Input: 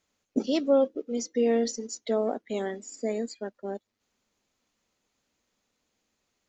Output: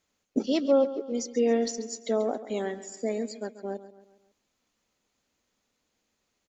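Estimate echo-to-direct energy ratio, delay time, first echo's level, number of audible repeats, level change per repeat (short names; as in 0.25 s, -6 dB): -13.5 dB, 0.137 s, -14.5 dB, 4, -6.5 dB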